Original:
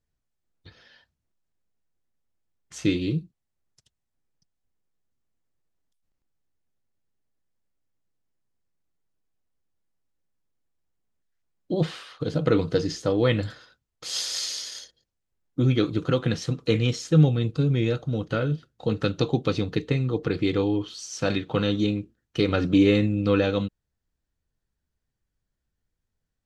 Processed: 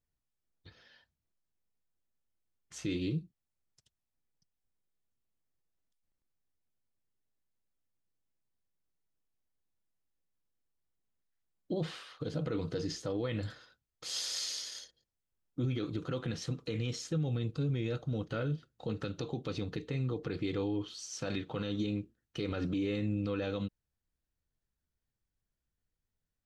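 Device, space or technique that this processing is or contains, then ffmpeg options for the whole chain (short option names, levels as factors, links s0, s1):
stacked limiters: -af "alimiter=limit=0.224:level=0:latency=1:release=143,alimiter=limit=0.112:level=0:latency=1:release=45,volume=0.473"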